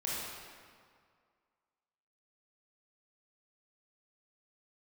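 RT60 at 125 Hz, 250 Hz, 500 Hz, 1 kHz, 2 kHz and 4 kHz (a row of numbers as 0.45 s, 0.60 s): 2.0 s, 2.0 s, 2.0 s, 2.1 s, 1.7 s, 1.4 s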